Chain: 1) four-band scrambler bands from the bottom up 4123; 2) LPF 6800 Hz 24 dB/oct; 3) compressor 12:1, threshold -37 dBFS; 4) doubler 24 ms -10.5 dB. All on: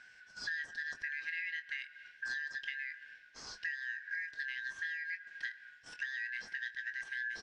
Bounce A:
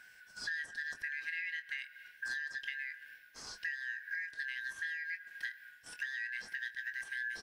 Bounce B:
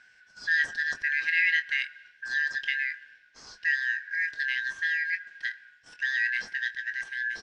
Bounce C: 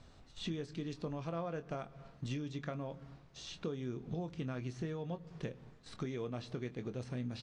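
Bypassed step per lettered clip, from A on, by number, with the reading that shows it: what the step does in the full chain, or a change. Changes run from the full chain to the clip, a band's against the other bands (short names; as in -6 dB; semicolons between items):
2, 8 kHz band +3.0 dB; 3, mean gain reduction 8.0 dB; 1, 2 kHz band -18.0 dB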